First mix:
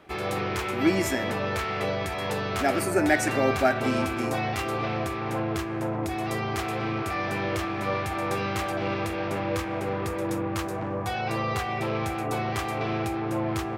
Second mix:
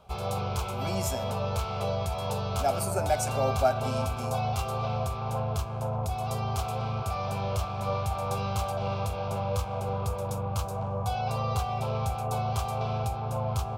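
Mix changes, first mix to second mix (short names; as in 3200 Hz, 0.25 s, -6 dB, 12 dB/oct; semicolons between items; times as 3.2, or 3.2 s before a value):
background: remove HPF 150 Hz 6 dB/oct; master: add fixed phaser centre 770 Hz, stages 4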